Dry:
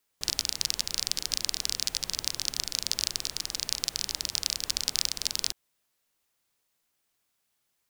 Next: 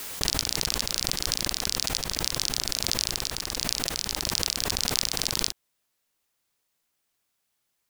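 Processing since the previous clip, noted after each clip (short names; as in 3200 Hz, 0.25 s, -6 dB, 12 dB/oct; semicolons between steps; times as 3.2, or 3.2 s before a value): backwards sustainer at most 25 dB/s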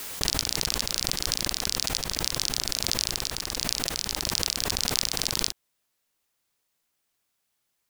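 nothing audible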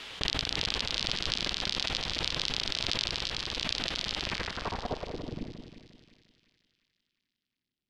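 low-pass sweep 3300 Hz -> 260 Hz, 4.19–5.35; split-band echo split 2000 Hz, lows 0.176 s, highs 0.357 s, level -8 dB; gain -4 dB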